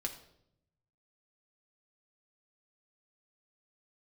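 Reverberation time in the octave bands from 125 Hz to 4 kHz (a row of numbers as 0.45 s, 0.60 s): 1.5 s, 1.1 s, 0.85 s, 0.65 s, 0.55 s, 0.60 s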